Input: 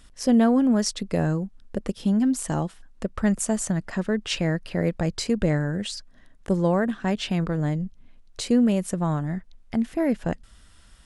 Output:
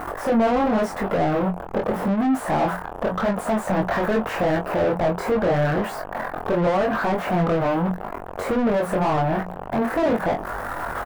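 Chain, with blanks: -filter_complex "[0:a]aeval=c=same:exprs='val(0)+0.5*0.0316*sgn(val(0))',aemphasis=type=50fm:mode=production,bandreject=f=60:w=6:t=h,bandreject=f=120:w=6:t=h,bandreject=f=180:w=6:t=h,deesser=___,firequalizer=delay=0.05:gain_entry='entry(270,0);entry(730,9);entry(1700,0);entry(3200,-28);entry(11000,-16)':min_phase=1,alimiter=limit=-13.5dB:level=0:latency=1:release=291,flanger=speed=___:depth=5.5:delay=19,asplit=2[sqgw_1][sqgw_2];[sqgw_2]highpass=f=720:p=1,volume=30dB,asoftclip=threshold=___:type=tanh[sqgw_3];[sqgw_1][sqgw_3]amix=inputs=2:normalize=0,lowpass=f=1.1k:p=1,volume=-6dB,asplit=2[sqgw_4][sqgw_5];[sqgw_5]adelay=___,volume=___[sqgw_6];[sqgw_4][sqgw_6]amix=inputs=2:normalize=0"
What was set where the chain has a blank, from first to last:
0.25, 0.86, -13.5dB, 22, -6.5dB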